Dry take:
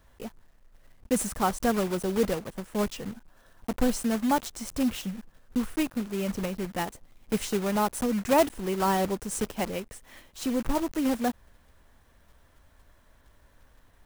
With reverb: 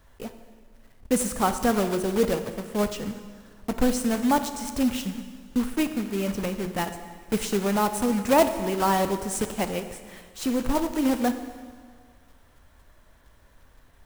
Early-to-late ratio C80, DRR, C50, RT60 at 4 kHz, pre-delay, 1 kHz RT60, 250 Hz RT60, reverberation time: 11.0 dB, 8.5 dB, 10.0 dB, 1.7 s, 8 ms, 1.8 s, 1.6 s, 1.8 s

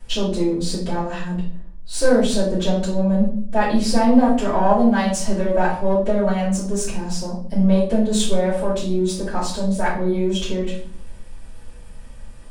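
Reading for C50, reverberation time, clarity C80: 5.0 dB, 0.55 s, 10.0 dB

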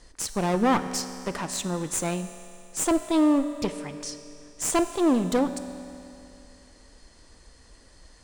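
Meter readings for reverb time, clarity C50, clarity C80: 2.7 s, 10.0 dB, 11.0 dB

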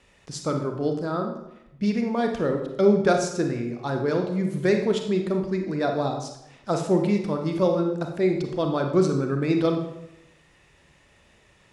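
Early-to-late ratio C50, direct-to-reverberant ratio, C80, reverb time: 6.0 dB, 3.5 dB, 9.0 dB, 0.85 s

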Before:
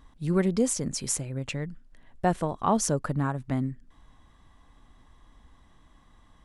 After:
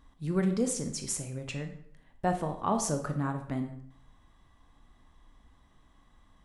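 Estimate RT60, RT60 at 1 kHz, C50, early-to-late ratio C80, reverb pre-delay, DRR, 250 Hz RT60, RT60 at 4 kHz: 0.65 s, 0.65 s, 9.0 dB, 13.0 dB, 16 ms, 5.5 dB, 0.65 s, 0.50 s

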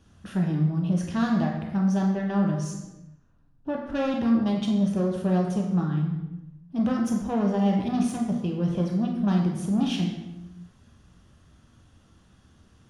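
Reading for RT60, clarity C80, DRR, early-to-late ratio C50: 0.95 s, 6.5 dB, 0.0 dB, 4.5 dB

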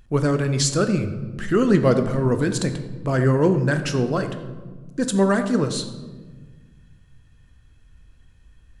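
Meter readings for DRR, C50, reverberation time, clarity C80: 7.5 dB, 9.5 dB, 1.4 s, 11.0 dB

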